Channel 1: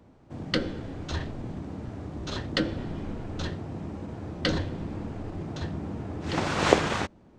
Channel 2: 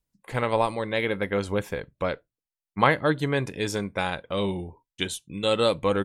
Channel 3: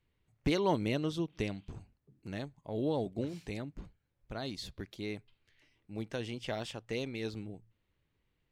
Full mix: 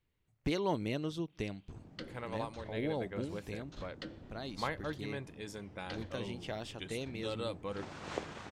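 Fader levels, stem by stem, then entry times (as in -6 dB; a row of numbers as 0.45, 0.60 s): -19.0, -17.0, -3.5 dB; 1.45, 1.80, 0.00 s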